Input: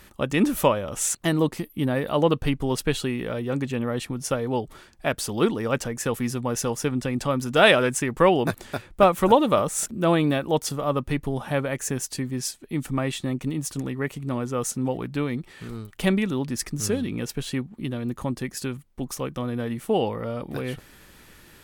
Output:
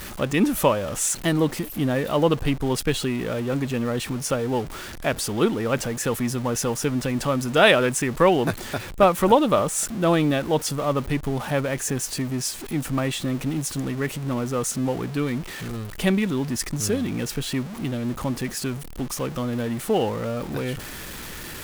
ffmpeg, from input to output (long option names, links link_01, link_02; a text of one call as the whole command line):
ffmpeg -i in.wav -af "aeval=exprs='val(0)+0.5*0.0266*sgn(val(0))':channel_layout=same" out.wav